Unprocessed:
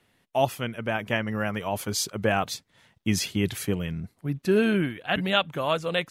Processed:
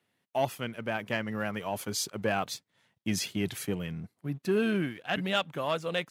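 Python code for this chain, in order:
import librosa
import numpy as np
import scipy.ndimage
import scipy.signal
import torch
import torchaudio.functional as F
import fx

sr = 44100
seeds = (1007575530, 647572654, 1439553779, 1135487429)

y = fx.leveller(x, sr, passes=1)
y = scipy.signal.sosfilt(scipy.signal.butter(2, 110.0, 'highpass', fs=sr, output='sos'), y)
y = y * 10.0 ** (-8.0 / 20.0)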